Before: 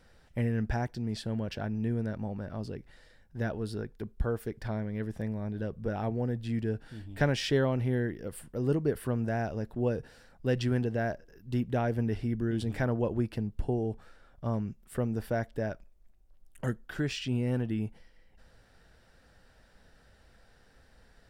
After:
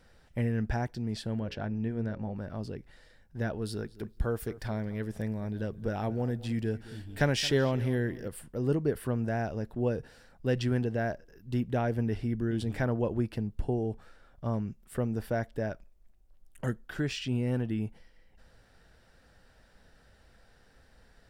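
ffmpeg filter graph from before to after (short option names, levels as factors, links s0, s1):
-filter_complex "[0:a]asettb=1/sr,asplit=3[s0][s1][s2];[s0]atrim=end=1.394[s3];[s1]atrim=start=1.39:end=2.35,asetpts=PTS-STARTPTS,afade=t=in:d=0.004:c=qsin,afade=t=out:st=0.956:d=0.004:c=qsin,bandreject=f=60:t=h:w=6,bandreject=f=120:t=h:w=6,bandreject=f=180:t=h:w=6,bandreject=f=240:t=h:w=6,bandreject=f=300:t=h:w=6,bandreject=f=360:t=h:w=6,bandreject=f=420:t=h:w=6,bandreject=f=480:t=h:w=6,bandreject=f=540:t=h:w=6,adynamicsmooth=sensitivity=5.5:basefreq=6100[s4];[s2]atrim=start=2.346[s5];[s3][s4]acrossfade=d=0.004:c1=hsin:c2=qsin[s6];[s6][s5]acrossfade=d=0.004:c1=qsin:c2=hsin,asettb=1/sr,asplit=3[s7][s8][s9];[s7]atrim=end=3.624[s10];[s8]atrim=start=3.62:end=8.28,asetpts=PTS-STARTPTS,afade=t=in:d=0.004:c=qsin,afade=t=out:st=4.656:d=0.004:c=qsin,highshelf=f=3500:g=7,asplit=2[s11][s12];[s12]adelay=220,lowpass=f=3800:p=1,volume=0.133,asplit=2[s13][s14];[s14]adelay=220,lowpass=f=3800:p=1,volume=0.28,asplit=2[s15][s16];[s16]adelay=220,lowpass=f=3800:p=1,volume=0.28[s17];[s11][s13][s15][s17]amix=inputs=4:normalize=0,atrim=end_sample=205506[s18];[s9]atrim=start=8.276[s19];[s10][s18]acrossfade=d=0.004:c1=hsin:c2=qsin[s20];[s20][s19]acrossfade=d=0.004:c1=qsin:c2=hsin"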